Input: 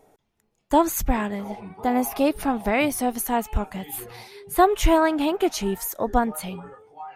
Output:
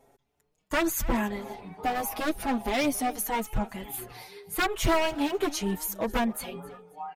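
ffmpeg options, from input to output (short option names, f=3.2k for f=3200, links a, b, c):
-filter_complex "[0:a]asettb=1/sr,asplit=3[a][b][c];[a]atrim=end=1.254[d];[b]atrim=start=1.25:end=2.03,asetpts=PTS-STARTPTS,afade=t=in:d=0.004:c=qsin,afade=t=out:st=0.776:d=0.004:c=qsin,equalizer=f=4k:w=2.8:g=6.5[e];[c]atrim=start=2.026[f];[d][e]acrossfade=d=0.004:c1=hsin:c2=qsin[g];[g][f]acrossfade=d=0.004:c1=qsin:c2=hsin,aeval=exprs='0.158*(abs(mod(val(0)/0.158+3,4)-2)-1)':c=same,asplit=2[h][i];[i]aecho=0:1:268|536:0.1|0.031[j];[h][j]amix=inputs=2:normalize=0,asplit=2[k][l];[l]adelay=5.5,afreqshift=0.79[m];[k][m]amix=inputs=2:normalize=1"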